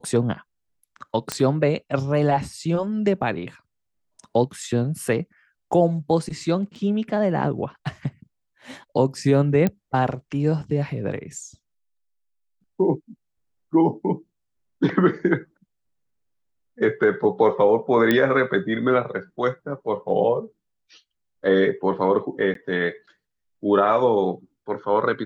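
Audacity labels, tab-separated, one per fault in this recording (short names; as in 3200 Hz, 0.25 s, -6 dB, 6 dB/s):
1.320000	1.320000	pop -8 dBFS
6.750000	6.760000	gap 6.6 ms
9.670000	9.670000	pop -10 dBFS
18.110000	18.110000	pop -7 dBFS
22.540000	22.550000	gap 13 ms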